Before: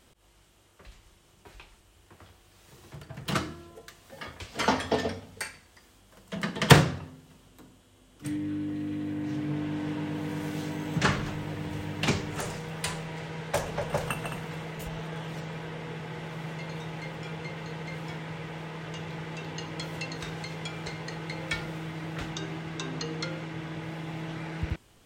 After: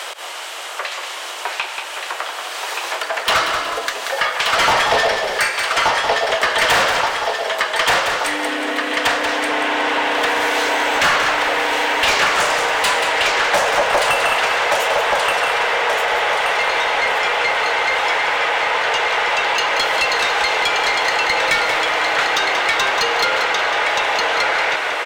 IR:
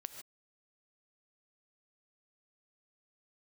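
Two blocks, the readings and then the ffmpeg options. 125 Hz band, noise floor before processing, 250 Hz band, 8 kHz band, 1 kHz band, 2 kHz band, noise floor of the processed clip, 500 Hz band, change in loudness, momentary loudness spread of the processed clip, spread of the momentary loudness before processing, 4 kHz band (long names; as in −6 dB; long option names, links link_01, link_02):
−11.0 dB, −60 dBFS, 0.0 dB, +15.0 dB, +20.0 dB, +20.5 dB, −29 dBFS, +15.0 dB, +15.5 dB, 9 LU, 11 LU, +18.5 dB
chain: -filter_complex "[0:a]highpass=frequency=530:width=0.5412,highpass=frequency=530:width=1.3066,asplit=2[link_01][link_02];[link_02]aecho=0:1:1177|2354|3531|4708:0.447|0.165|0.0612|0.0226[link_03];[link_01][link_03]amix=inputs=2:normalize=0,asplit=2[link_04][link_05];[link_05]highpass=frequency=720:poles=1,volume=35dB,asoftclip=type=tanh:threshold=-1.5dB[link_06];[link_04][link_06]amix=inputs=2:normalize=0,lowpass=frequency=3100:poles=1,volume=-6dB,asplit=5[link_07][link_08][link_09][link_10][link_11];[link_08]adelay=183,afreqshift=-31,volume=-8dB[link_12];[link_09]adelay=366,afreqshift=-62,volume=-17.4dB[link_13];[link_10]adelay=549,afreqshift=-93,volume=-26.7dB[link_14];[link_11]adelay=732,afreqshift=-124,volume=-36.1dB[link_15];[link_07][link_12][link_13][link_14][link_15]amix=inputs=5:normalize=0,asplit=2[link_16][link_17];[1:a]atrim=start_sample=2205[link_18];[link_17][link_18]afir=irnorm=-1:irlink=0,volume=-5dB[link_19];[link_16][link_19]amix=inputs=2:normalize=0,acompressor=threshold=-34dB:ratio=2,volume=8dB"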